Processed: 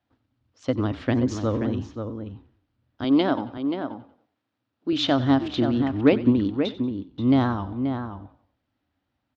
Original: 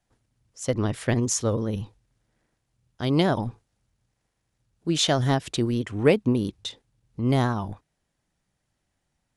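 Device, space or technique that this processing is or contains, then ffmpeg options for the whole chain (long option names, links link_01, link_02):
frequency-shifting delay pedal into a guitar cabinet: -filter_complex "[0:a]asplit=5[link_01][link_02][link_03][link_04][link_05];[link_02]adelay=92,afreqshift=-32,volume=-17dB[link_06];[link_03]adelay=184,afreqshift=-64,volume=-24.3dB[link_07];[link_04]adelay=276,afreqshift=-96,volume=-31.7dB[link_08];[link_05]adelay=368,afreqshift=-128,volume=-39dB[link_09];[link_01][link_06][link_07][link_08][link_09]amix=inputs=5:normalize=0,highpass=80,equalizer=frequency=83:width_type=q:width=4:gain=5,equalizer=frequency=160:width_type=q:width=4:gain=-10,equalizer=frequency=280:width_type=q:width=4:gain=10,equalizer=frequency=420:width_type=q:width=4:gain=-4,equalizer=frequency=1300:width_type=q:width=4:gain=3,lowpass=frequency=4100:width=0.5412,lowpass=frequency=4100:width=1.3066,asettb=1/sr,asplit=3[link_10][link_11][link_12];[link_10]atrim=end=3.044[link_13];[link_11]atrim=start=3.04:end=4.93,asetpts=PTS-STARTPTS,afade=type=in:duration=0.004:curve=qsin,afade=type=out:start_time=1.886:duration=0.004:curve=qsin,highpass=210[link_14];[link_12]atrim=start=4.926[link_15];[link_13][link_14]acrossfade=duration=0.004:curve1=hsin:curve2=qsin[link_16];[link_16][link_15]acrossfade=duration=0.004:curve1=qsin:curve2=hsin,equalizer=frequency=2000:width=2.1:gain=-3,asplit=2[link_17][link_18];[link_18]adelay=530.6,volume=-7dB,highshelf=frequency=4000:gain=-11.9[link_19];[link_17][link_19]amix=inputs=2:normalize=0"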